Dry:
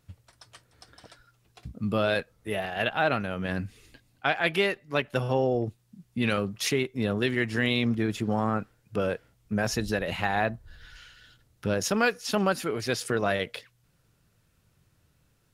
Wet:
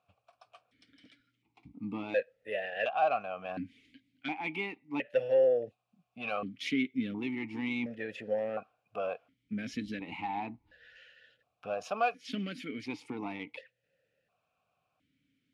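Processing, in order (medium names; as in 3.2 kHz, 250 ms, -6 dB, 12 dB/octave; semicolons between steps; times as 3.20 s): peaking EQ 360 Hz -8.5 dB 0.36 oct; saturation -18 dBFS, distortion -17 dB; stepped vowel filter 1.4 Hz; trim +7 dB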